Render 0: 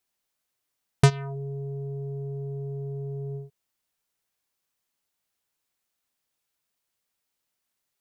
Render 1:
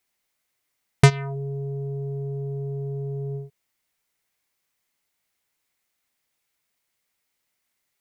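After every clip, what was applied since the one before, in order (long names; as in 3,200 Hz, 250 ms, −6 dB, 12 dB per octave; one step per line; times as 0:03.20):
parametric band 2,100 Hz +7 dB 0.33 octaves
level +3.5 dB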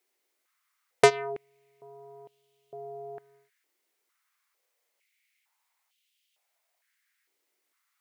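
high-pass on a step sequencer 2.2 Hz 370–3,000 Hz
level −2 dB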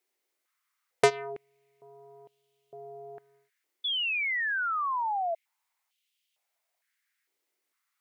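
sound drawn into the spectrogram fall, 0:03.84–0:05.35, 650–3,500 Hz −26 dBFS
level −3.5 dB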